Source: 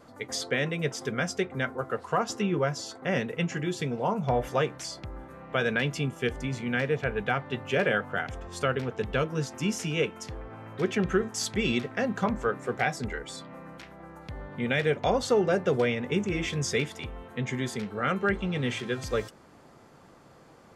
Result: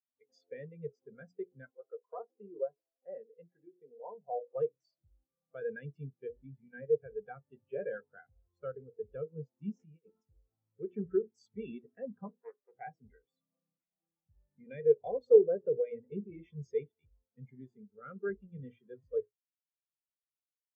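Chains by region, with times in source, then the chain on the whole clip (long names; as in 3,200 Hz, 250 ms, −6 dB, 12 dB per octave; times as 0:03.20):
0:01.70–0:04.56: high-pass filter 560 Hz + spectral tilt −4.5 dB per octave
0:09.76–0:10.22: high-shelf EQ 3,600 Hz −6.5 dB + compressor whose output falls as the input rises −33 dBFS, ratio −0.5
0:12.29–0:12.74: high-pass filter 640 Hz 6 dB per octave + highs frequency-modulated by the lows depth 0.62 ms
whole clip: mains-hum notches 60/120/180/240/300/360/420/480 Hz; dynamic equaliser 450 Hz, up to +4 dB, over −39 dBFS, Q 3.8; every bin expanded away from the loudest bin 2.5 to 1; level +1 dB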